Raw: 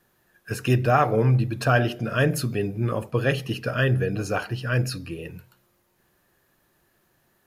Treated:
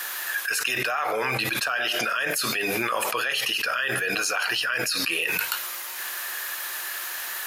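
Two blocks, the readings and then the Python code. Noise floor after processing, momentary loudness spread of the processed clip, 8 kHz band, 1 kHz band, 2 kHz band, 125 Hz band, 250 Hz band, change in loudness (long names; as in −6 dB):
−33 dBFS, 6 LU, +11.5 dB, −1.0 dB, +6.0 dB, −20.0 dB, −9.0 dB, −1.0 dB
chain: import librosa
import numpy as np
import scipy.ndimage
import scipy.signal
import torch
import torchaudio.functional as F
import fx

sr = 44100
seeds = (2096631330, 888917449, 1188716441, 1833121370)

y = scipy.signal.sosfilt(scipy.signal.butter(2, 1400.0, 'highpass', fs=sr, output='sos'), x)
y = fx.env_flatten(y, sr, amount_pct=100)
y = y * 10.0 ** (-2.5 / 20.0)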